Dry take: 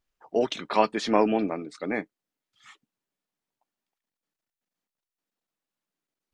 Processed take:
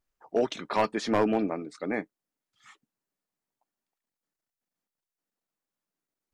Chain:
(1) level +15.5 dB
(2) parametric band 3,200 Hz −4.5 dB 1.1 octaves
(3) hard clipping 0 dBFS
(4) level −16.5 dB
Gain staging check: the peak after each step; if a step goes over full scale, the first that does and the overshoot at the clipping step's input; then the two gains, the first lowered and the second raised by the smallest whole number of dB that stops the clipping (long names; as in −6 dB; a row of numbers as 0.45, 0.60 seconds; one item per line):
+10.0, +9.5, 0.0, −16.5 dBFS
step 1, 9.5 dB
step 1 +5.5 dB, step 4 −6.5 dB